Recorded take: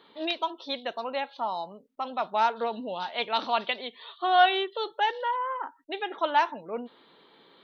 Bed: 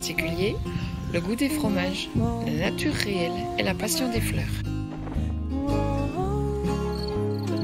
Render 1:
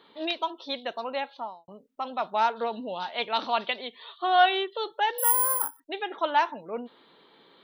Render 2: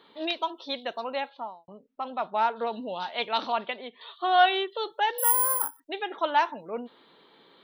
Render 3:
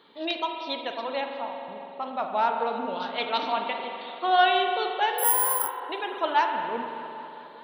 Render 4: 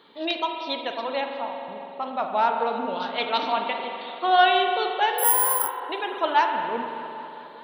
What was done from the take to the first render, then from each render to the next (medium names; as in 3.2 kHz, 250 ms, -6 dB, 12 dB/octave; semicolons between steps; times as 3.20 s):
1.27–1.68 s: studio fade out; 5.18–5.80 s: careless resampling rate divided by 4×, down none, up zero stuff
1.29–2.67 s: distance through air 180 m; 3.52–4.01 s: distance through air 330 m
feedback echo behind a low-pass 203 ms, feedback 76%, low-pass 1.9 kHz, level -15 dB; spring tank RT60 2.6 s, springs 43 ms, chirp 40 ms, DRR 3.5 dB
trim +2.5 dB